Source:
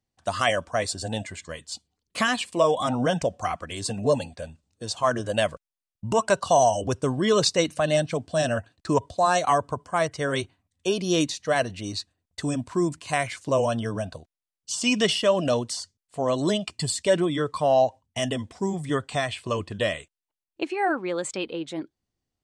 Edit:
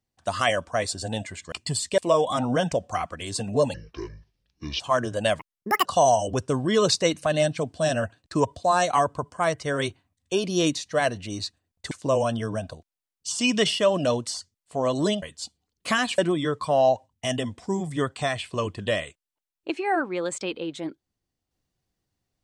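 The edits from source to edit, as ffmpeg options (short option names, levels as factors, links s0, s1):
-filter_complex "[0:a]asplit=10[s0][s1][s2][s3][s4][s5][s6][s7][s8][s9];[s0]atrim=end=1.522[s10];[s1]atrim=start=16.648:end=17.112[s11];[s2]atrim=start=2.478:end=4.244[s12];[s3]atrim=start=4.24:end=4.93,asetpts=PTS-STARTPTS,asetrate=28665,aresample=44100[s13];[s4]atrim=start=4.926:end=5.524[s14];[s5]atrim=start=5.52:end=6.39,asetpts=PTS-STARTPTS,asetrate=83349,aresample=44100[s15];[s6]atrim=start=6.386:end=12.452[s16];[s7]atrim=start=13.338:end=16.652[s17];[s8]atrim=start=1.518:end=2.482[s18];[s9]atrim=start=17.108[s19];[s10][s11]acrossfade=d=0.004:c1=hsin:c2=hsin[s20];[s20][s12]acrossfade=d=0.004:c1=hsin:c2=hsin[s21];[s21][s13]acrossfade=d=0.004:c1=hsin:c2=hsin[s22];[s22][s14]acrossfade=d=0.004:c1=hsin:c2=hsin[s23];[s23][s15]acrossfade=d=0.004:c1=hsin:c2=hsin[s24];[s24][s16]acrossfade=d=0.004:c1=hsin:c2=hsin[s25];[s25][s17]acrossfade=d=0.004:c1=hsin:c2=hsin[s26];[s26][s18]acrossfade=d=0.004:c1=hsin:c2=hsin[s27];[s27][s19]acrossfade=d=0.004:c1=hsin:c2=hsin"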